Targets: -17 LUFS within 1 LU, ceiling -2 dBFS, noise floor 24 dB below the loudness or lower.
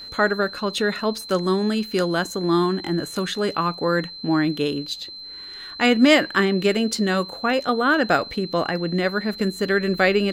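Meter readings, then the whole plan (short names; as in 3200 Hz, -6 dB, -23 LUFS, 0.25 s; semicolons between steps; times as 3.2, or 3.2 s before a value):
steady tone 4100 Hz; tone level -35 dBFS; loudness -21.5 LUFS; peak -4.5 dBFS; loudness target -17.0 LUFS
-> notch 4100 Hz, Q 30; gain +4.5 dB; limiter -2 dBFS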